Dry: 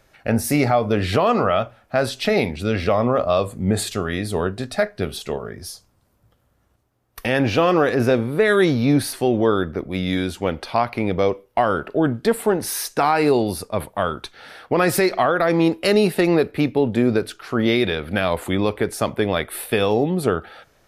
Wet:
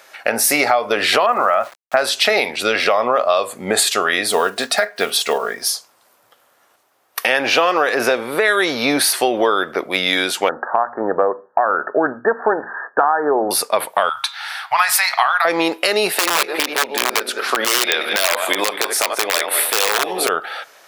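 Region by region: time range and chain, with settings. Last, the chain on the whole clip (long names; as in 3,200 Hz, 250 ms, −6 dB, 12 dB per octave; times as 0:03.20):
0:01.26–0:01.97: low-pass filter 2,000 Hz 24 dB per octave + notch filter 450 Hz, Q 5.3 + centre clipping without the shift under −43 dBFS
0:04.31–0:05.70: one scale factor per block 7 bits + comb filter 4.3 ms, depth 35%
0:10.49–0:13.51: Chebyshev low-pass filter 1,800 Hz, order 10 + mains-hum notches 60/120/180/240 Hz
0:14.09–0:15.45: elliptic band-stop filter 120–830 Hz, stop band 50 dB + hum removal 136.9 Hz, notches 36
0:16.14–0:20.29: feedback delay that plays each chunk backwards 105 ms, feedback 47%, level −9 dB + high-pass filter 280 Hz + wrap-around overflow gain 12 dB
whole clip: high-pass filter 690 Hz 12 dB per octave; downward compressor 6 to 1, threshold −27 dBFS; boost into a limiter +16 dB; level −1 dB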